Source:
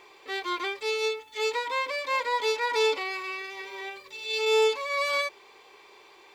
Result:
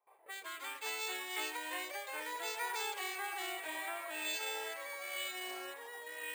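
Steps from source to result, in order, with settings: steep high-pass 560 Hz 36 dB/octave; gate with hold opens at -44 dBFS; level-controlled noise filter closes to 720 Hz, open at -28.5 dBFS; compression 6:1, threshold -40 dBFS, peak gain reduction 15 dB; rotary cabinet horn 0.65 Hz; ever faster or slower copies 104 ms, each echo -3 st, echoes 2; careless resampling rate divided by 4×, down none, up hold; trim +2.5 dB

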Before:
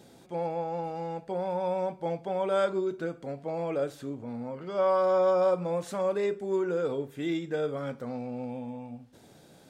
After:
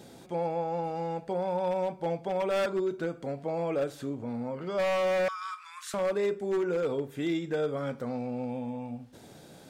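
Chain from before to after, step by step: 5.28–5.94 s: steep high-pass 1.1 kHz 72 dB/octave; in parallel at -0.5 dB: compression 10:1, threshold -38 dBFS, peak gain reduction 16.5 dB; on the sum: wavefolder -21 dBFS; trim -1.5 dB

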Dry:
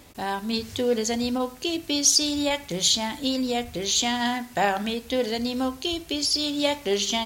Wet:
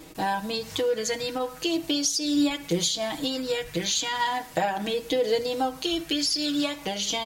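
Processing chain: compression 10:1, threshold -26 dBFS, peak gain reduction 12 dB; comb 6.3 ms, depth 95%; sweeping bell 0.4 Hz 340–1800 Hz +7 dB

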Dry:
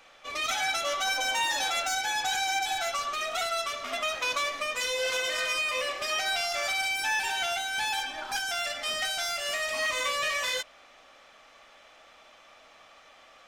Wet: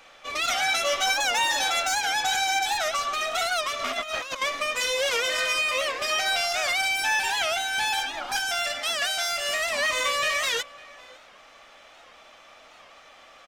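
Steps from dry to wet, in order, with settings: 0.70–1.12 s: doubling 16 ms -4 dB; 3.79–4.42 s: compressor with a negative ratio -34 dBFS, ratio -0.5; 8.79–9.32 s: bass shelf 180 Hz -8.5 dB; echo from a far wall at 95 m, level -20 dB; warped record 78 rpm, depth 160 cents; trim +4 dB

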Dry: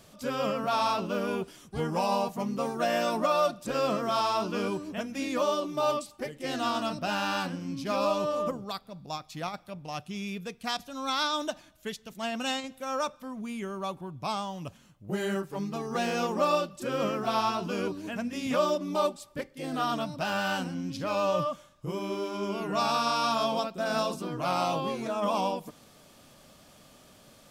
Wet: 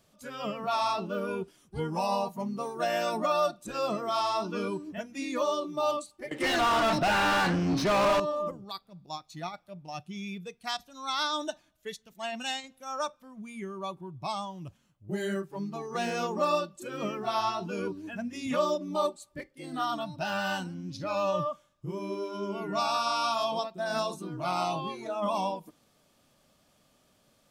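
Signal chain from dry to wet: spectral noise reduction 10 dB; 6.31–8.20 s: overdrive pedal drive 34 dB, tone 2.1 kHz, clips at -16.5 dBFS; trim -1 dB

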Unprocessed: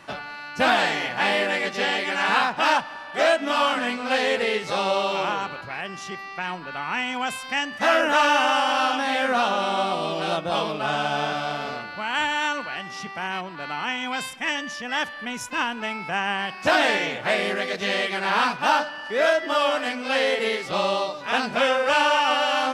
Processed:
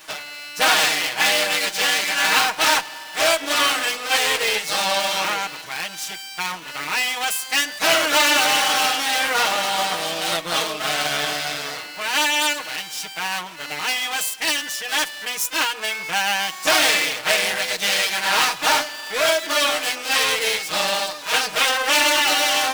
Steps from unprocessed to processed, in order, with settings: comb filter that takes the minimum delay 6.4 ms; RIAA curve recording; trim +2 dB

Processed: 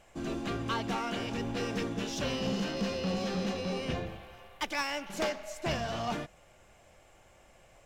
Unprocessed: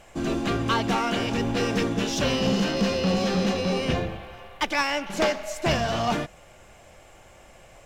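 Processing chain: 4.05–5.28 s: treble shelf 5.3 kHz -> 8.2 kHz +7 dB; trim -9 dB

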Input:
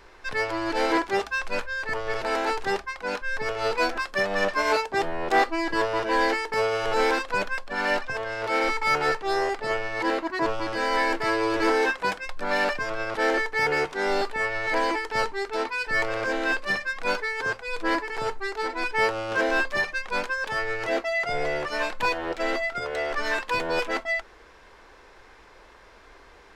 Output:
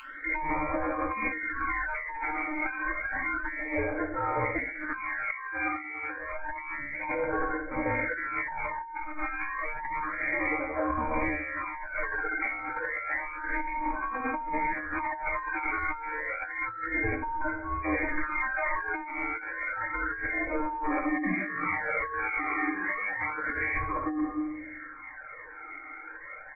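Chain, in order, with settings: comb filter that takes the minimum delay 2.6 ms; spectral gate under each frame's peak -20 dB strong; flutter echo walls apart 10.8 m, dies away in 0.47 s; frequency inversion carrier 3.1 kHz; comb 4.5 ms, depth 56%; formant-preserving pitch shift -6.5 st; reverberation RT60 1.0 s, pre-delay 9 ms, DRR 4 dB; phase shifter stages 12, 0.3 Hz, lowest notch 170–2000 Hz; bass shelf 440 Hz -5.5 dB; compressor with a negative ratio -34 dBFS, ratio -1; dynamic bell 1.4 kHz, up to -6 dB, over -45 dBFS, Q 1.1; trim +5 dB

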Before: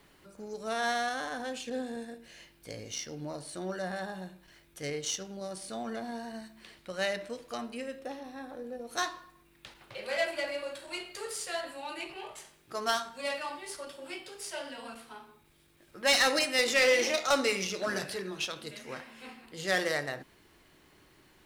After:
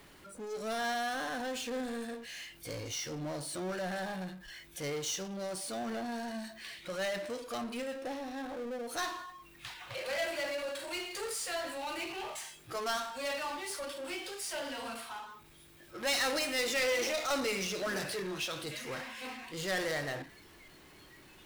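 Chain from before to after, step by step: spectral noise reduction 16 dB; power-law waveshaper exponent 0.5; trim -8.5 dB

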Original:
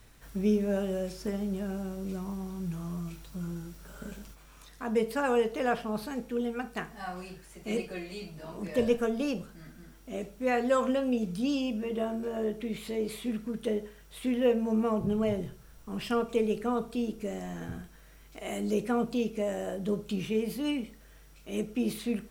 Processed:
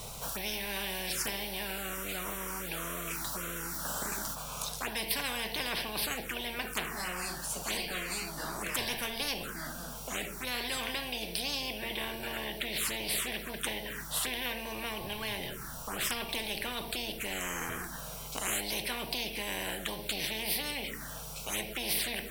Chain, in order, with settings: touch-sensitive phaser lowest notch 270 Hz, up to 1.3 kHz, full sweep at -30 dBFS; spectrum-flattening compressor 10:1

